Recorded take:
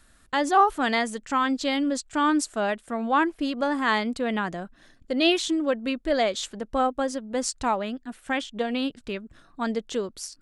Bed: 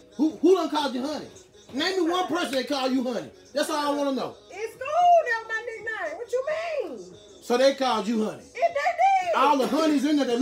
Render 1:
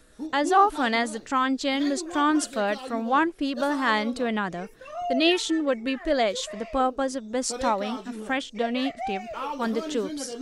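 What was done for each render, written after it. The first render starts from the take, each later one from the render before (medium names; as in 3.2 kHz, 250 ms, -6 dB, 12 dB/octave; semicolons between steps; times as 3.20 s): add bed -12 dB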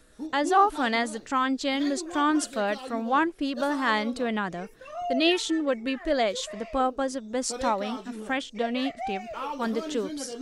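trim -1.5 dB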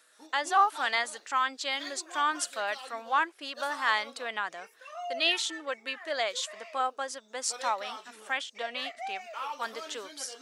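high-pass 900 Hz 12 dB/octave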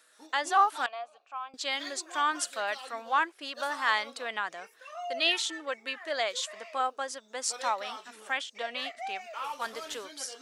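0.86–1.54 s: vowel filter a; 9.44–10.05 s: CVSD coder 64 kbps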